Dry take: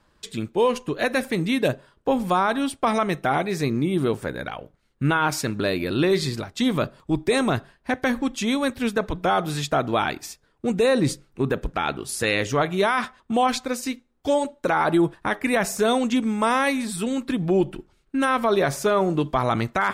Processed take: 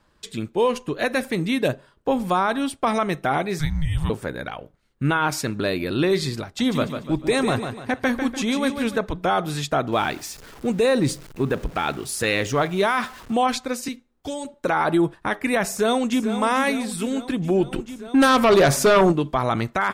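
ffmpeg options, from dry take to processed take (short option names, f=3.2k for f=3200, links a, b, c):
-filter_complex "[0:a]asettb=1/sr,asplit=3[a][b][c];[a]atrim=end=3.594[d];[b]atrim=start=3.59:end=4.1,asetpts=PTS-STARTPTS,afade=t=in:d=0.004:c=qsin,afade=t=out:st=0.506:d=0.004:c=qsin,afreqshift=-300[e];[c]atrim=start=4.096[f];[d][e]acrossfade=d=0.004:c1=hsin:c2=qsin[g];[g][f]acrossfade=d=0.004:c1=qsin:c2=hsin,asettb=1/sr,asplit=3[h][i][j];[h]atrim=end=6.444[k];[i]atrim=start=6.44:end=8.96,asetpts=PTS-STARTPTS,afade=t=in:d=0.004:c=qsin,afade=t=out:st=2.516:d=0.004:c=qsin,aecho=1:1:147|294|441|588:0.422|0.164|0.0641|0.025,atrim=end_sample=111132[l];[j]atrim=start=8.956[m];[k][l]acrossfade=d=0.004:c1=hsin:c2=qsin[n];[n][m]acrossfade=d=0.004:c1=qsin:c2=hsin,asettb=1/sr,asplit=3[o][p][q];[o]atrim=end=9.924[r];[p]atrim=start=9.92:end=13.34,asetpts=PTS-STARTPTS,afade=t=in:d=0.004:c=qsin,afade=t=out:st=3.416:d=0.004:c=qsin,aeval=exprs='val(0)+0.5*0.0126*sgn(val(0))':c=same[s];[q]atrim=start=13.336[t];[r][s]acrossfade=d=0.004:c1=hsin:c2=qsin[u];[u][t]acrossfade=d=0.004:c1=qsin:c2=hsin,asettb=1/sr,asplit=3[v][w][x];[v]atrim=end=13.884[y];[w]atrim=start=13.88:end=14.54,asetpts=PTS-STARTPTS,afade=t=in:d=0.004:c=qsin,afade=t=out:st=0.656:d=0.004:c=qsin,acrossover=split=230|3000[z][aa][ab];[aa]acompressor=threshold=-33dB:ratio=3:attack=3.2:release=140:knee=2.83:detection=peak[ac];[z][ac][ab]amix=inputs=3:normalize=0[ad];[x]atrim=start=14.536[ae];[y][ad]acrossfade=d=0.004:c1=hsin:c2=qsin[af];[af][ae]acrossfade=d=0.004:c1=qsin:c2=hsin,asplit=2[ag][ah];[ah]afade=t=in:st=15.68:d=0.01,afade=t=out:st=16.31:d=0.01,aecho=0:1:440|880|1320|1760|2200|2640|3080:0.316228|0.189737|0.113842|0.0683052|0.0409831|0.0245899|0.0147539[ai];[ag][ai]amix=inputs=2:normalize=0,asplit=3[aj][ak][al];[aj]afade=t=out:st=17.71:d=0.02[am];[ak]aeval=exprs='0.299*sin(PI/2*1.78*val(0)/0.299)':c=same,afade=t=in:st=17.71:d=0.02,afade=t=out:st=19.11:d=0.02[an];[al]afade=t=in:st=19.11:d=0.02[ao];[am][an][ao]amix=inputs=3:normalize=0"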